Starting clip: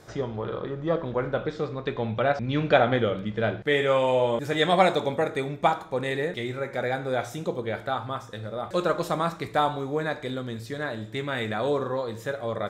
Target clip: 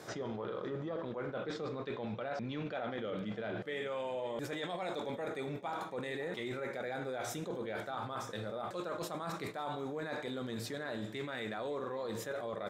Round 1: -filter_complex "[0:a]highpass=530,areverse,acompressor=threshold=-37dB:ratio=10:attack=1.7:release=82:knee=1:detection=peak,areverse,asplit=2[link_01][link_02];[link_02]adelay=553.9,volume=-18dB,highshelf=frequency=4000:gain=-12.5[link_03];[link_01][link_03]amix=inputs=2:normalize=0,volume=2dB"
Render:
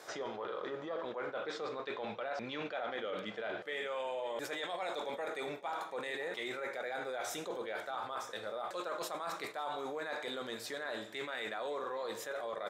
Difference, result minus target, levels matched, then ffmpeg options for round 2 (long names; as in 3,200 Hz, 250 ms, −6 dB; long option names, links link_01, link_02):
125 Hz band −13.5 dB
-filter_complex "[0:a]highpass=170,areverse,acompressor=threshold=-37dB:ratio=10:attack=1.7:release=82:knee=1:detection=peak,areverse,asplit=2[link_01][link_02];[link_02]adelay=553.9,volume=-18dB,highshelf=frequency=4000:gain=-12.5[link_03];[link_01][link_03]amix=inputs=2:normalize=0,volume=2dB"